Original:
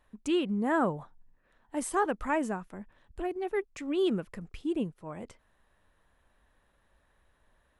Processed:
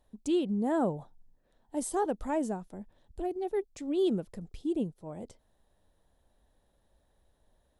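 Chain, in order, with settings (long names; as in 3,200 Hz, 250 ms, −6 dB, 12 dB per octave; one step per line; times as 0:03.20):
flat-topped bell 1,700 Hz −11 dB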